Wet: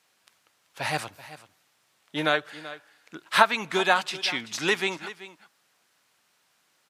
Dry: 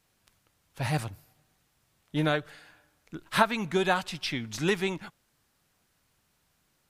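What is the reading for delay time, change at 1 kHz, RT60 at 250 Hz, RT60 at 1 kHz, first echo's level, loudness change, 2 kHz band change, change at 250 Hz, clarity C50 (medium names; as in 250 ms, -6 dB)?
383 ms, +5.0 dB, no reverb, no reverb, -16.0 dB, +3.5 dB, +6.0 dB, -3.0 dB, no reverb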